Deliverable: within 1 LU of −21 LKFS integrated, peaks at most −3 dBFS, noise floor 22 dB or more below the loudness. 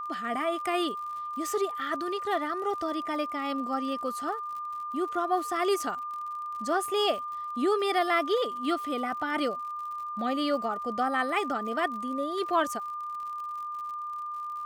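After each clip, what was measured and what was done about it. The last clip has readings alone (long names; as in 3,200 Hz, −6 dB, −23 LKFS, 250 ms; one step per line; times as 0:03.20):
crackle rate 61 per second; interfering tone 1,200 Hz; level of the tone −33 dBFS; integrated loudness −30.0 LKFS; sample peak −14.0 dBFS; target loudness −21.0 LKFS
→ click removal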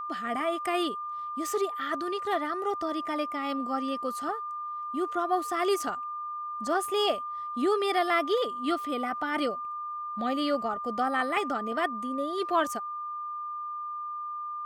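crackle rate 0.48 per second; interfering tone 1,200 Hz; level of the tone −33 dBFS
→ notch filter 1,200 Hz, Q 30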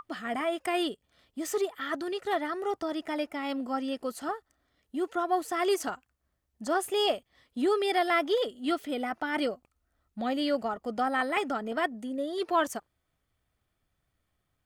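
interfering tone none found; integrated loudness −30.5 LKFS; sample peak −15.0 dBFS; target loudness −21.0 LKFS
→ level +9.5 dB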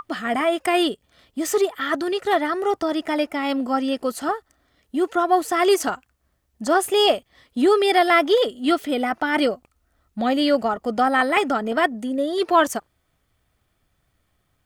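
integrated loudness −21.0 LKFS; sample peak −5.5 dBFS; background noise floor −70 dBFS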